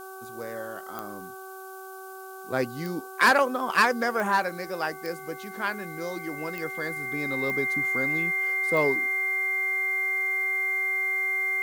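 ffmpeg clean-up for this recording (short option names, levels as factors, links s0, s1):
-af "adeclick=t=4,bandreject=f=380.7:t=h:w=4,bandreject=f=761.4:t=h:w=4,bandreject=f=1142.1:t=h:w=4,bandreject=f=1522.8:t=h:w=4,bandreject=f=2100:w=30,afftdn=nr=30:nf=-41"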